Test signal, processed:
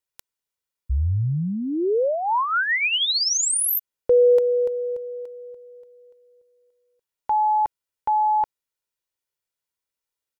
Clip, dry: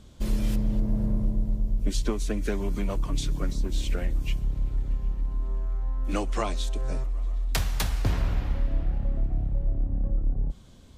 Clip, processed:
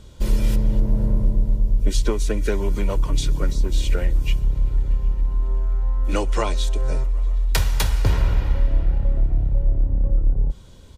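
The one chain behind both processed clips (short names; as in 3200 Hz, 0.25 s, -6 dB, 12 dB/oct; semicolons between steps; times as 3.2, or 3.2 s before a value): comb 2.1 ms, depth 38%; gain +5 dB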